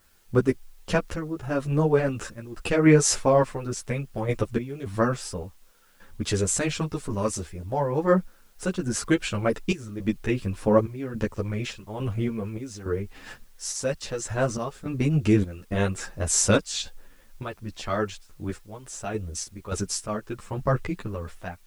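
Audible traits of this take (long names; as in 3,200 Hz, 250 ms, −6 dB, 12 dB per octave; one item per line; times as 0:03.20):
sample-and-hold tremolo, depth 85%
a quantiser's noise floor 12 bits, dither triangular
a shimmering, thickened sound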